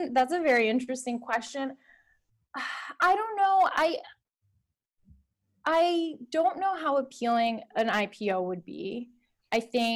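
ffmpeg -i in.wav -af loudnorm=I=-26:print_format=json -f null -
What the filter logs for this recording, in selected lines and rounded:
"input_i" : "-28.3",
"input_tp" : "-15.4",
"input_lra" : "2.3",
"input_thresh" : "-39.0",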